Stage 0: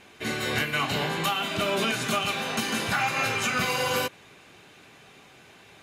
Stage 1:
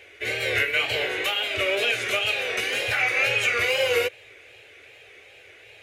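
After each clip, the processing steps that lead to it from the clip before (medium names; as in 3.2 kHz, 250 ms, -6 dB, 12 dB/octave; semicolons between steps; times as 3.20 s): FFT filter 110 Hz 0 dB, 170 Hz -28 dB, 490 Hz +8 dB, 1 kHz -11 dB, 2.2 kHz +9 dB, 4.5 kHz -3 dB; wow and flutter 99 cents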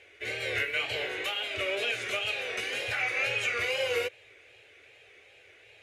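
low-pass 11 kHz 12 dB/octave; trim -7 dB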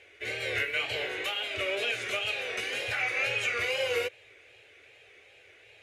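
no audible change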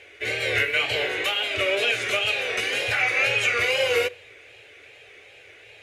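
reverberation RT60 0.50 s, pre-delay 7 ms, DRR 18.5 dB; trim +7.5 dB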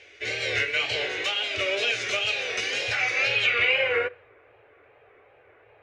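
low-pass sweep 5.7 kHz -> 1.1 kHz, 3.16–4.30 s; trim -4 dB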